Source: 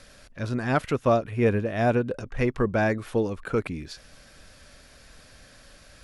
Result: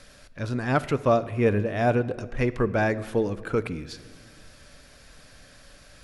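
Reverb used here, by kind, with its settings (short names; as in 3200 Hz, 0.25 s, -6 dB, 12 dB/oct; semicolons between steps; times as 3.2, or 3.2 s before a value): shoebox room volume 1800 m³, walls mixed, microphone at 0.36 m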